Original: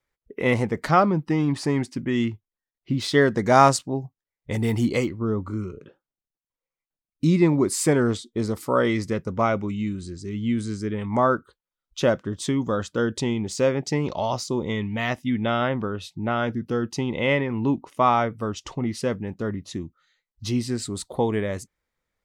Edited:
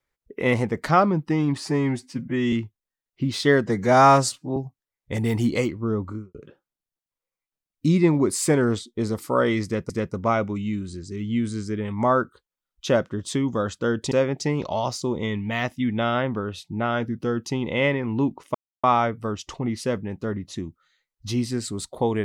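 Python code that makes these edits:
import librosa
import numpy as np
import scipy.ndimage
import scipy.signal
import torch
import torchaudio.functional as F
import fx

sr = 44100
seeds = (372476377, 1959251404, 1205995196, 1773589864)

y = fx.studio_fade_out(x, sr, start_s=5.43, length_s=0.3)
y = fx.edit(y, sr, fx.stretch_span(start_s=1.58, length_s=0.63, factor=1.5),
    fx.stretch_span(start_s=3.35, length_s=0.6, factor=1.5),
    fx.repeat(start_s=9.03, length_s=0.25, count=2),
    fx.cut(start_s=13.25, length_s=0.33),
    fx.insert_silence(at_s=18.01, length_s=0.29), tone=tone)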